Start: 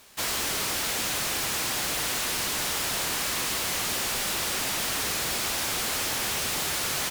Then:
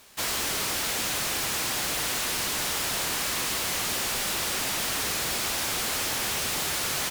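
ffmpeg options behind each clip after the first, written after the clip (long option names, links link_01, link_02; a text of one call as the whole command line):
ffmpeg -i in.wav -af anull out.wav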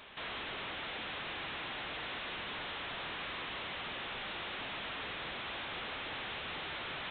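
ffmpeg -i in.wav -af "aresample=8000,asoftclip=type=tanh:threshold=-37dB,aresample=44100,alimiter=level_in=16dB:limit=-24dB:level=0:latency=1,volume=-16dB,lowshelf=frequency=380:gain=-4,volume=5dB" out.wav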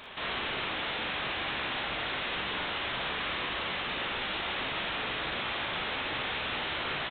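ffmpeg -i in.wav -af "aecho=1:1:41|57:0.562|0.562,volume=5.5dB" out.wav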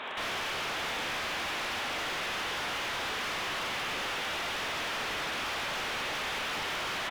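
ffmpeg -i in.wav -filter_complex "[0:a]highpass=160,asplit=2[link_01][link_02];[link_02]highpass=frequency=720:poles=1,volume=17dB,asoftclip=type=tanh:threshold=-23dB[link_03];[link_01][link_03]amix=inputs=2:normalize=0,lowpass=frequency=1300:poles=1,volume=-6dB,aeval=exprs='0.0237*(abs(mod(val(0)/0.0237+3,4)-2)-1)':channel_layout=same,volume=2.5dB" out.wav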